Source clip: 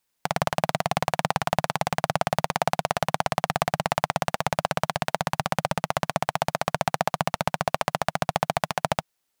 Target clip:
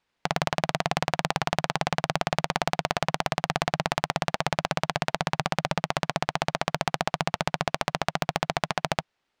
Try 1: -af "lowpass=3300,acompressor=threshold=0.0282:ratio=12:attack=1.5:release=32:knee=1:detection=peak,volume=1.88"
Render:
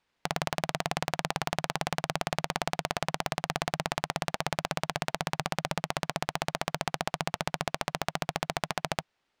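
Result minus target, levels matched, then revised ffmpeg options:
compression: peak gain reduction +6 dB
-af "lowpass=3300,acompressor=threshold=0.0596:ratio=12:attack=1.5:release=32:knee=1:detection=peak,volume=1.88"

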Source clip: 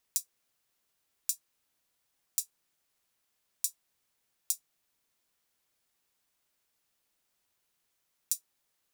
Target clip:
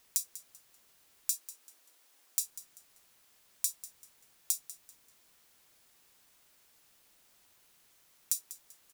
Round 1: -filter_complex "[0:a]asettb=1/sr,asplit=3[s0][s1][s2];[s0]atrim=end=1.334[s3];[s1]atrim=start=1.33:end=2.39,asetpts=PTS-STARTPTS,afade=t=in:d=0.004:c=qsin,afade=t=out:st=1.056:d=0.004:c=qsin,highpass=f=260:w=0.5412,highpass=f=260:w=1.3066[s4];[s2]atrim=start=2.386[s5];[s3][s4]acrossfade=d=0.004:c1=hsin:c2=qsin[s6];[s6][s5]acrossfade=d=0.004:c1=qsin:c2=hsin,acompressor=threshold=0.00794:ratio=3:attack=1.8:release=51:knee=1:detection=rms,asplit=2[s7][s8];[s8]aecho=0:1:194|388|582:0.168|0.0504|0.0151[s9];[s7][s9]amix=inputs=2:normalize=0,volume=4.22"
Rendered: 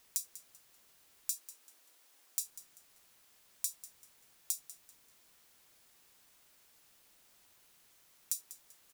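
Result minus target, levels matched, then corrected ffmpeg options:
compression: peak gain reduction +4.5 dB
-filter_complex "[0:a]asettb=1/sr,asplit=3[s0][s1][s2];[s0]atrim=end=1.334[s3];[s1]atrim=start=1.33:end=2.39,asetpts=PTS-STARTPTS,afade=t=in:d=0.004:c=qsin,afade=t=out:st=1.056:d=0.004:c=qsin,highpass=f=260:w=0.5412,highpass=f=260:w=1.3066[s4];[s2]atrim=start=2.386[s5];[s3][s4]acrossfade=d=0.004:c1=hsin:c2=qsin[s6];[s6][s5]acrossfade=d=0.004:c1=qsin:c2=hsin,acompressor=threshold=0.0168:ratio=3:attack=1.8:release=51:knee=1:detection=rms,asplit=2[s7][s8];[s8]aecho=0:1:194|388|582:0.168|0.0504|0.0151[s9];[s7][s9]amix=inputs=2:normalize=0,volume=4.22"

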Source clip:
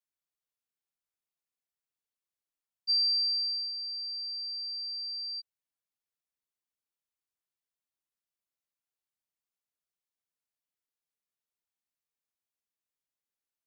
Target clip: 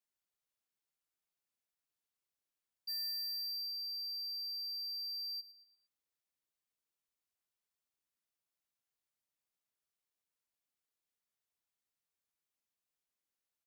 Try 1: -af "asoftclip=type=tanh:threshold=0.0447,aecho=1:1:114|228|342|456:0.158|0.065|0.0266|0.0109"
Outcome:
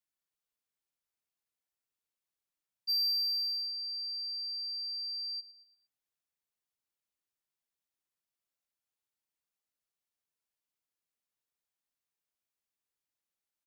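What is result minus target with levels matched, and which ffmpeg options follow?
saturation: distortion -10 dB
-af "asoftclip=type=tanh:threshold=0.0119,aecho=1:1:114|228|342|456:0.158|0.065|0.0266|0.0109"

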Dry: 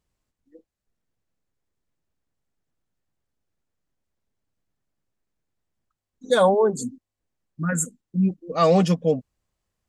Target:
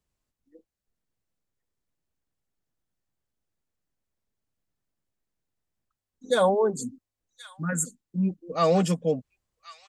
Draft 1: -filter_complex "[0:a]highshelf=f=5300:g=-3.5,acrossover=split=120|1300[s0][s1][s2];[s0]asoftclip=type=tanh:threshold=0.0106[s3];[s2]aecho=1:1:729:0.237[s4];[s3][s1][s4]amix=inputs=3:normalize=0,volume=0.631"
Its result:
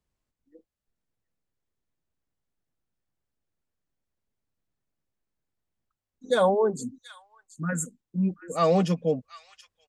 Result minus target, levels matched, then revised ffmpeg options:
echo 346 ms early; 8 kHz band -4.0 dB
-filter_complex "[0:a]highshelf=f=5300:g=2.5,acrossover=split=120|1300[s0][s1][s2];[s0]asoftclip=type=tanh:threshold=0.0106[s3];[s2]aecho=1:1:1075:0.237[s4];[s3][s1][s4]amix=inputs=3:normalize=0,volume=0.631"

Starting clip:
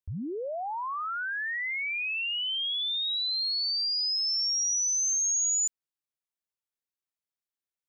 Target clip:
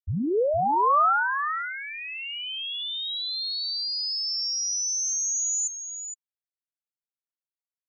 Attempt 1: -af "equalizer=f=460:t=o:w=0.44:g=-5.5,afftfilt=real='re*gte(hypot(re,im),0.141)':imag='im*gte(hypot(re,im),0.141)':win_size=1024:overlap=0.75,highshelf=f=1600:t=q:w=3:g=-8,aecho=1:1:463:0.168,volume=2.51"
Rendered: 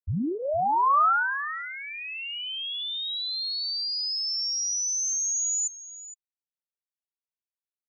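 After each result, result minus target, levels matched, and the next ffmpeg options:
500 Hz band -5.0 dB; echo-to-direct -6.5 dB
-af "equalizer=f=460:t=o:w=0.44:g=4,afftfilt=real='re*gte(hypot(re,im),0.141)':imag='im*gte(hypot(re,im),0.141)':win_size=1024:overlap=0.75,highshelf=f=1600:t=q:w=3:g=-8,aecho=1:1:463:0.168,volume=2.51"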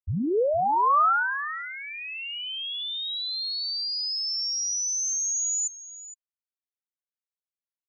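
echo-to-direct -6.5 dB
-af "equalizer=f=460:t=o:w=0.44:g=4,afftfilt=real='re*gte(hypot(re,im),0.141)':imag='im*gte(hypot(re,im),0.141)':win_size=1024:overlap=0.75,highshelf=f=1600:t=q:w=3:g=-8,aecho=1:1:463:0.355,volume=2.51"

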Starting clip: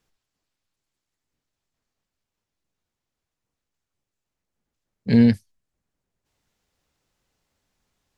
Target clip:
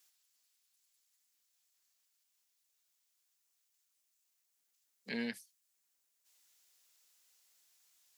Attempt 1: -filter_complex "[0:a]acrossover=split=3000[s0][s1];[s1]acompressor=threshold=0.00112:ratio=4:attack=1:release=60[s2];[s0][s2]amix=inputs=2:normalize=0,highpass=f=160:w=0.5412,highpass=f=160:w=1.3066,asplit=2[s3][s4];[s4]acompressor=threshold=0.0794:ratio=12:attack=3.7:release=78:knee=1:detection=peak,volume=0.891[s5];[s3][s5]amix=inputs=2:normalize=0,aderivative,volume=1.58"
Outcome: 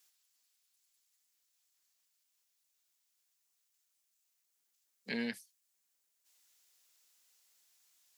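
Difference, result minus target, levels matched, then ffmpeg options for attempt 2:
compression: peak gain reduction -8.5 dB
-filter_complex "[0:a]acrossover=split=3000[s0][s1];[s1]acompressor=threshold=0.00112:ratio=4:attack=1:release=60[s2];[s0][s2]amix=inputs=2:normalize=0,highpass=f=160:w=0.5412,highpass=f=160:w=1.3066,asplit=2[s3][s4];[s4]acompressor=threshold=0.0266:ratio=12:attack=3.7:release=78:knee=1:detection=peak,volume=0.891[s5];[s3][s5]amix=inputs=2:normalize=0,aderivative,volume=1.58"

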